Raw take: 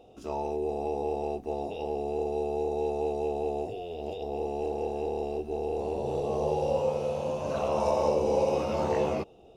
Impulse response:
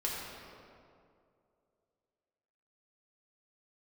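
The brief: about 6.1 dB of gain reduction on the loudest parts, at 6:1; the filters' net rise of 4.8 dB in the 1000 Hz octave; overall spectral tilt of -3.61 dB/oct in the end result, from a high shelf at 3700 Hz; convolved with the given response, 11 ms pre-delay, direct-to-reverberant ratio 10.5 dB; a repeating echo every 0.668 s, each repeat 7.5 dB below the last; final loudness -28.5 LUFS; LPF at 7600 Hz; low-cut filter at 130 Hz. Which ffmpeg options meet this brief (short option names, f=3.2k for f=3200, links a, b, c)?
-filter_complex "[0:a]highpass=130,lowpass=7.6k,equalizer=f=1k:t=o:g=7,highshelf=f=3.7k:g=-9,acompressor=threshold=-26dB:ratio=6,aecho=1:1:668|1336|2004|2672|3340:0.422|0.177|0.0744|0.0312|0.0131,asplit=2[a][b];[1:a]atrim=start_sample=2205,adelay=11[c];[b][c]afir=irnorm=-1:irlink=0,volume=-15.5dB[d];[a][d]amix=inputs=2:normalize=0,volume=1.5dB"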